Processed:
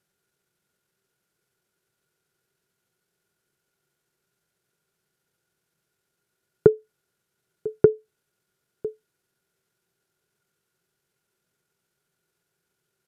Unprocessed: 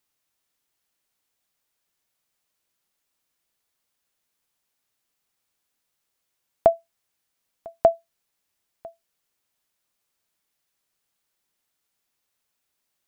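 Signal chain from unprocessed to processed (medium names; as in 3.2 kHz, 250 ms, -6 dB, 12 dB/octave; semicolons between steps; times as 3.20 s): compression 5:1, threshold -23 dBFS, peak gain reduction 11 dB; small resonant body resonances 230/580/2200 Hz, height 16 dB, ringing for 25 ms; pitch shift -7.5 st; trim -2 dB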